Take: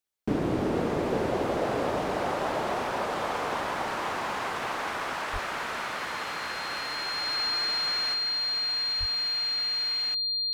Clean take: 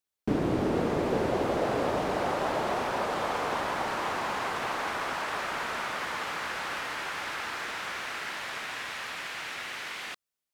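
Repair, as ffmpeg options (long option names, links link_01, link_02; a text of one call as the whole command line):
ffmpeg -i in.wav -filter_complex "[0:a]bandreject=frequency=4200:width=30,asplit=3[link_01][link_02][link_03];[link_01]afade=type=out:start_time=5.32:duration=0.02[link_04];[link_02]highpass=frequency=140:width=0.5412,highpass=frequency=140:width=1.3066,afade=type=in:start_time=5.32:duration=0.02,afade=type=out:start_time=5.44:duration=0.02[link_05];[link_03]afade=type=in:start_time=5.44:duration=0.02[link_06];[link_04][link_05][link_06]amix=inputs=3:normalize=0,asplit=3[link_07][link_08][link_09];[link_07]afade=type=out:start_time=8.99:duration=0.02[link_10];[link_08]highpass=frequency=140:width=0.5412,highpass=frequency=140:width=1.3066,afade=type=in:start_time=8.99:duration=0.02,afade=type=out:start_time=9.11:duration=0.02[link_11];[link_09]afade=type=in:start_time=9.11:duration=0.02[link_12];[link_10][link_11][link_12]amix=inputs=3:normalize=0,asetnsamples=nb_out_samples=441:pad=0,asendcmd='8.14 volume volume 5dB',volume=0dB" out.wav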